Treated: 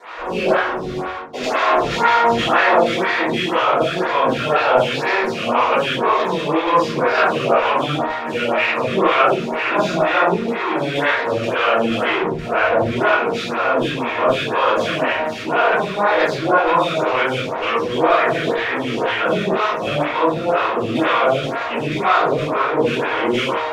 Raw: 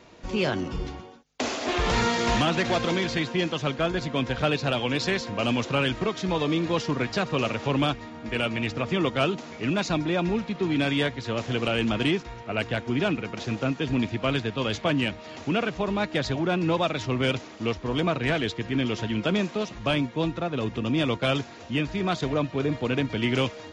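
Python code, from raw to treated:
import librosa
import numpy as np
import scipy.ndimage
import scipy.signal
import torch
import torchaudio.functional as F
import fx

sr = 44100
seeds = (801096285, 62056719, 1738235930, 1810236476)

p1 = fx.spec_dilate(x, sr, span_ms=120)
p2 = fx.tilt_eq(p1, sr, slope=-2.5, at=(12.07, 12.96))
p3 = fx.fuzz(p2, sr, gain_db=47.0, gate_db=-44.0)
p4 = p2 + (p3 * librosa.db_to_amplitude(-10.5))
p5 = fx.filter_lfo_bandpass(p4, sr, shape='saw_down', hz=2.1, low_hz=750.0, high_hz=1700.0, q=1.1)
p6 = fx.room_shoebox(p5, sr, seeds[0], volume_m3=67.0, walls='mixed', distance_m=3.3)
p7 = fx.stagger_phaser(p6, sr, hz=2.0)
y = p7 * librosa.db_to_amplitude(-5.0)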